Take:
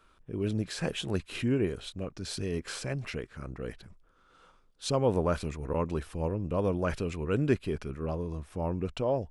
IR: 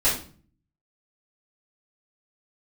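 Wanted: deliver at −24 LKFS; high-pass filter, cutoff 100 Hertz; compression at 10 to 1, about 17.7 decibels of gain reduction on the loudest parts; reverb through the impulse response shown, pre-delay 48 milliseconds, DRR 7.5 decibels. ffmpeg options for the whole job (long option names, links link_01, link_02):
-filter_complex "[0:a]highpass=100,acompressor=threshold=-39dB:ratio=10,asplit=2[link_01][link_02];[1:a]atrim=start_sample=2205,adelay=48[link_03];[link_02][link_03]afir=irnorm=-1:irlink=0,volume=-21.5dB[link_04];[link_01][link_04]amix=inputs=2:normalize=0,volume=19.5dB"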